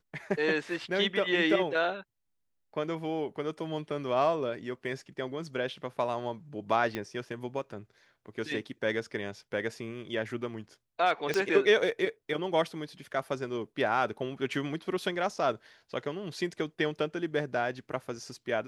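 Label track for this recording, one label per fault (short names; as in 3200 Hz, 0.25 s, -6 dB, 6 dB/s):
6.950000	6.950000	pop -19 dBFS
11.340000	11.340000	pop -16 dBFS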